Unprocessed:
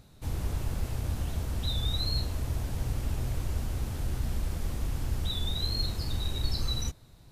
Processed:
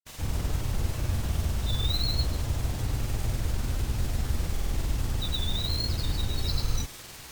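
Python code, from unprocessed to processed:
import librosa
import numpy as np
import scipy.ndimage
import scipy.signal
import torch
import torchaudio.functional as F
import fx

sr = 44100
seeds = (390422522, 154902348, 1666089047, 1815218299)

p1 = fx.quant_dither(x, sr, seeds[0], bits=6, dither='triangular')
p2 = x + (p1 * 10.0 ** (-4.5 / 20.0))
p3 = fx.granulator(p2, sr, seeds[1], grain_ms=100.0, per_s=20.0, spray_ms=100.0, spread_st=0)
y = np.repeat(scipy.signal.resample_poly(p3, 1, 2), 2)[:len(p3)]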